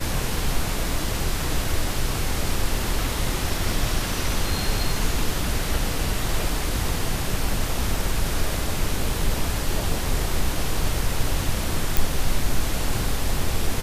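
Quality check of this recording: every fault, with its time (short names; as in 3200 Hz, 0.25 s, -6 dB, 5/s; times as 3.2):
11.97 pop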